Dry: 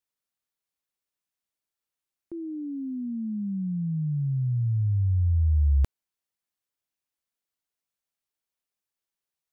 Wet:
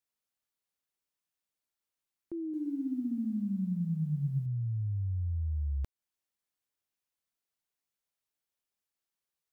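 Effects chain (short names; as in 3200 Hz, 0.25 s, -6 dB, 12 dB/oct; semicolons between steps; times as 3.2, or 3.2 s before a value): compressor 6:1, threshold -30 dBFS, peak gain reduction 10.5 dB; 2.41–4.46 lo-fi delay 0.125 s, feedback 55%, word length 11-bit, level -6 dB; gain -1.5 dB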